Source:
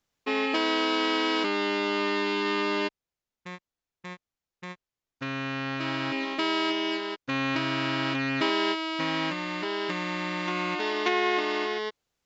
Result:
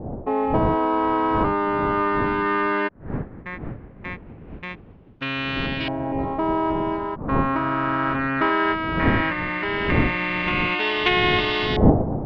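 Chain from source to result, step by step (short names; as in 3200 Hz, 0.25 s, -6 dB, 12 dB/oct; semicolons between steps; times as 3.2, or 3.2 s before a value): wind noise 250 Hz -32 dBFS; LFO low-pass saw up 0.17 Hz 730–3700 Hz; 5.66–6.19 thirty-one-band EQ 1250 Hz -12 dB, 4000 Hz -5 dB, 6300 Hz -9 dB; gain +3.5 dB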